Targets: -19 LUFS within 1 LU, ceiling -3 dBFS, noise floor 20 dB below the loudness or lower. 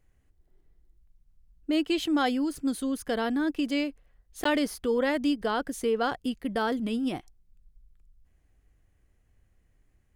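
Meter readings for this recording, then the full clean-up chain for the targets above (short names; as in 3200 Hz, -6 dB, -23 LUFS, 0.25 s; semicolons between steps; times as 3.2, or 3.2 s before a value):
dropouts 1; longest dropout 14 ms; loudness -28.5 LUFS; peak -14.5 dBFS; loudness target -19.0 LUFS
-> interpolate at 4.44, 14 ms; gain +9.5 dB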